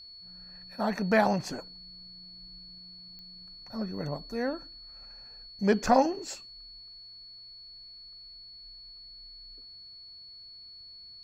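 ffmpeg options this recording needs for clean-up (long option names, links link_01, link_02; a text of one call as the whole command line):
ffmpeg -i in.wav -af "adeclick=threshold=4,bandreject=frequency=4400:width=30" out.wav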